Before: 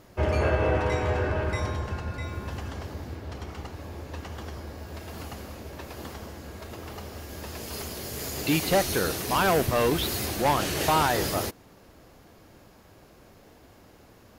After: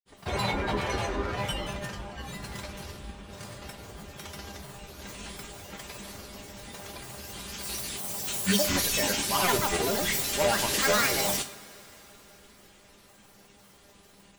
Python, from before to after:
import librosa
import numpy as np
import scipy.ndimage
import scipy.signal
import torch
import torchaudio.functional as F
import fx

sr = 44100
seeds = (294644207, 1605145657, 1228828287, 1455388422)

y = fx.high_shelf(x, sr, hz=2300.0, db=11.5)
y = fx.granulator(y, sr, seeds[0], grain_ms=100.0, per_s=20.0, spray_ms=100.0, spread_st=12)
y = fx.comb_fb(y, sr, f0_hz=200.0, decay_s=0.15, harmonics='all', damping=0.0, mix_pct=80)
y = fx.rev_double_slope(y, sr, seeds[1], early_s=0.55, late_s=4.5, knee_db=-18, drr_db=9.0)
y = F.gain(torch.from_numpy(y), 3.5).numpy()